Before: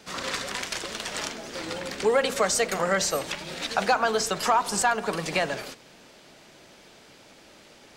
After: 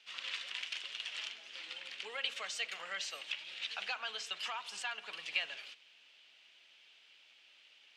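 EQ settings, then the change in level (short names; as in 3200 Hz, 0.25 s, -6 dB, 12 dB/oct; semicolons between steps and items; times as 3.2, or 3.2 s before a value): band-pass 2900 Hz, Q 3.7; -1.5 dB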